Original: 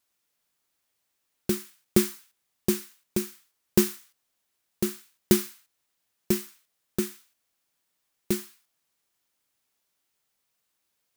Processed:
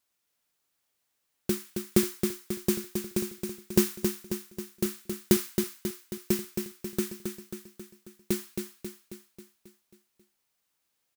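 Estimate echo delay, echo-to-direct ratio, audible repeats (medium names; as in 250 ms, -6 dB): 270 ms, -4.5 dB, 6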